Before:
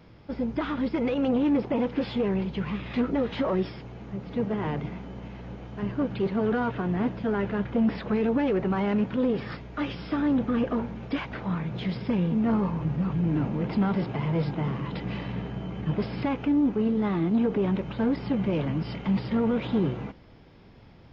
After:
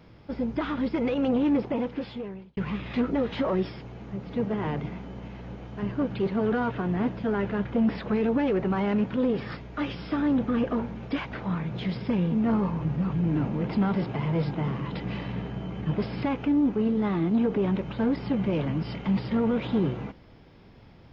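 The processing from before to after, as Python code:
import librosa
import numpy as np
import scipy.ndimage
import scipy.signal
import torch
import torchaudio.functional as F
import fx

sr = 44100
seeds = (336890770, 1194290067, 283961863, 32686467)

y = fx.edit(x, sr, fx.fade_out_span(start_s=1.55, length_s=1.02), tone=tone)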